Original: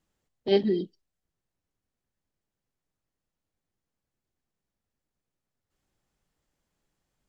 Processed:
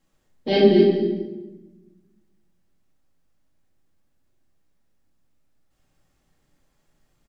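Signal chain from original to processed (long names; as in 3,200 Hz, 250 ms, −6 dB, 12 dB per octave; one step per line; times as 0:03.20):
single-tap delay 233 ms −9 dB
rectangular room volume 650 cubic metres, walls mixed, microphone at 2.2 metres
level +4 dB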